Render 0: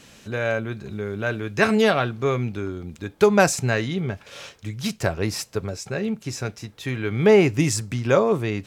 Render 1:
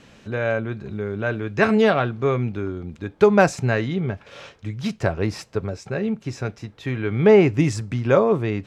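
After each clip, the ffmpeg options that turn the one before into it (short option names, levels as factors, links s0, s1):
-af "aemphasis=mode=reproduction:type=75fm,volume=1.12"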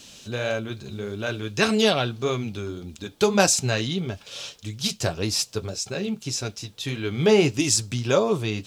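-af "aexciter=amount=6.2:drive=6.1:freq=2900,acrusher=bits=9:mix=0:aa=0.000001,flanger=delay=2.9:depth=5.7:regen=-49:speed=1.7:shape=sinusoidal"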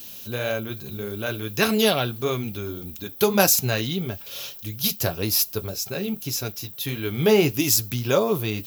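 -af "aexciter=amount=12.9:drive=9.5:freq=12000"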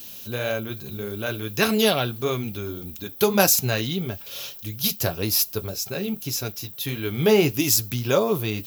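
-af anull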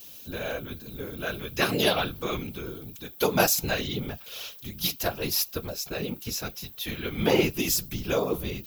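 -filter_complex "[0:a]acrossover=split=520|4500[s0][s1][s2];[s1]dynaudnorm=f=120:g=17:m=1.78[s3];[s0][s3][s2]amix=inputs=3:normalize=0,afftfilt=real='hypot(re,im)*cos(2*PI*random(0))':imag='hypot(re,im)*sin(2*PI*random(1))':win_size=512:overlap=0.75"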